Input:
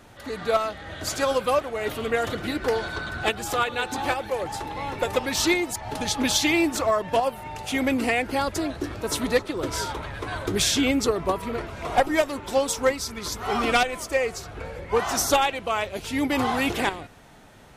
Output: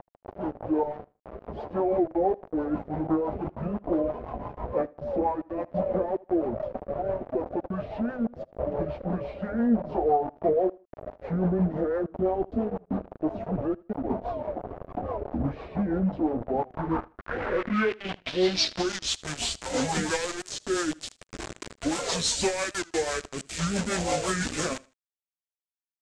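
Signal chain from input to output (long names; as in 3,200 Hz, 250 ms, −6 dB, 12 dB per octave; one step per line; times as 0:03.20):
mains-hum notches 60/120/180/240/300/360/420 Hz
reverb reduction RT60 1 s
brickwall limiter −18 dBFS, peak gain reduction 10 dB
upward compression, threshold −33 dBFS
flanger 0.21 Hz, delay 4.7 ms, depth 9.2 ms, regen +45%
bit reduction 6 bits
low-pass filter sweep 1,000 Hz → 11,000 Hz, 0:11.20–0:13.12
change of speed 0.683×
rotating-speaker cabinet horn 6 Hz
repeating echo 78 ms, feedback 27%, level −23 dB
wow of a warped record 78 rpm, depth 100 cents
level +5 dB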